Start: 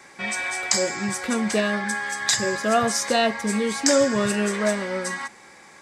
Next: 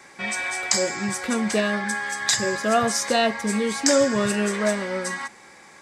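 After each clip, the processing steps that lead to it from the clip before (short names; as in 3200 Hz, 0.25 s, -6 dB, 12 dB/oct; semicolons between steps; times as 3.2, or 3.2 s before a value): nothing audible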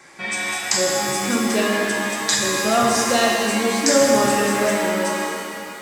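shimmer reverb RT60 2.4 s, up +7 st, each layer -8 dB, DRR -1.5 dB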